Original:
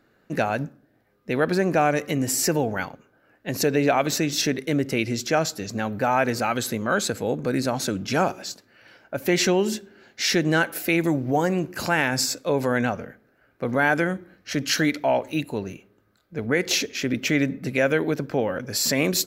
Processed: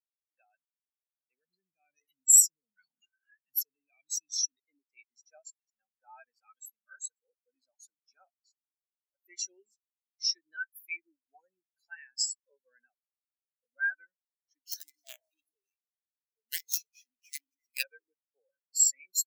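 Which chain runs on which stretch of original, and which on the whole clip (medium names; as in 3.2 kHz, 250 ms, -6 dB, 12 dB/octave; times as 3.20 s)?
1.39–4.60 s: FFT filter 180 Hz 0 dB, 830 Hz -13 dB, 3.7 kHz -3 dB + level flattener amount 100%
14.65–17.83 s: high-pass 210 Hz + echo whose repeats swap between lows and highs 134 ms, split 1.4 kHz, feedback 58%, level -14 dB + companded quantiser 2-bit
whole clip: high-pass 84 Hz 6 dB/octave; pre-emphasis filter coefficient 0.97; spectral contrast expander 4:1; trim -5.5 dB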